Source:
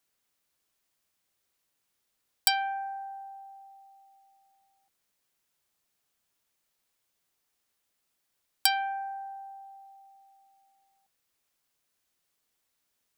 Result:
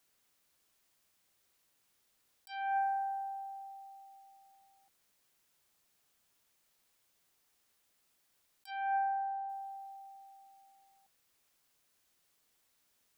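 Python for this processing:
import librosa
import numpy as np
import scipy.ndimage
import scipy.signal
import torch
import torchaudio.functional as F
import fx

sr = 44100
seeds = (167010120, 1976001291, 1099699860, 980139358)

y = fx.lowpass(x, sr, hz=3100.0, slope=12, at=(8.7, 9.48), fade=0.02)
y = fx.over_compress(y, sr, threshold_db=-34.0, ratio=-0.5)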